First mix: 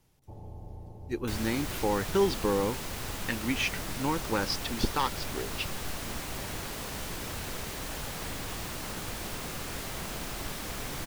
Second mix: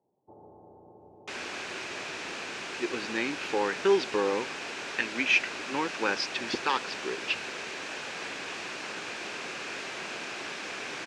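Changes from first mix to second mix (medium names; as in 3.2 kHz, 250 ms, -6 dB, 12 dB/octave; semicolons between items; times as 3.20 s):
speech: entry +1.70 s; master: add cabinet simulation 310–6800 Hz, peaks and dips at 380 Hz +4 dB, 1.6 kHz +6 dB, 2.5 kHz +9 dB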